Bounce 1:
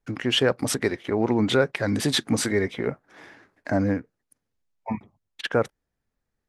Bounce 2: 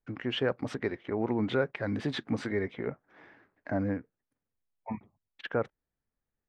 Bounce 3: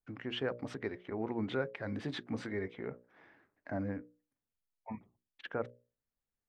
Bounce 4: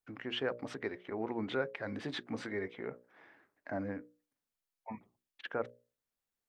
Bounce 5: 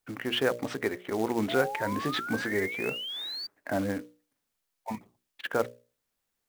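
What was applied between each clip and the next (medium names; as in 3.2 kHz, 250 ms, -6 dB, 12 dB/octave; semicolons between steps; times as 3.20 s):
low-pass 2.6 kHz 12 dB/octave; trim -7.5 dB
hum notches 60/120/180/240/300/360/420/480/540/600 Hz; trim -6 dB
bass shelf 190 Hz -10 dB; trim +2 dB
painted sound rise, 1.48–3.47 s, 650–4700 Hz -45 dBFS; short-mantissa float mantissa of 2-bit; trim +8.5 dB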